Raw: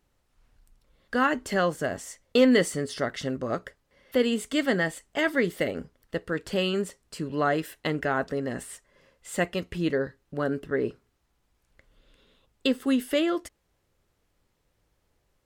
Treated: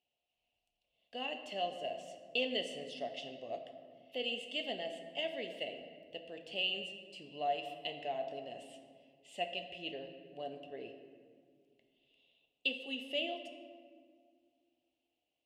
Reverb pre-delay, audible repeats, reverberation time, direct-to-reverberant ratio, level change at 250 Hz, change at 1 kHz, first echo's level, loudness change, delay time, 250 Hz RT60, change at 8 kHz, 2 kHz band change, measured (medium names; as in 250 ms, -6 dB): 4 ms, no echo, 2.0 s, 5.5 dB, -21.5 dB, -9.5 dB, no echo, -12.0 dB, no echo, 2.6 s, -21.0 dB, -12.0 dB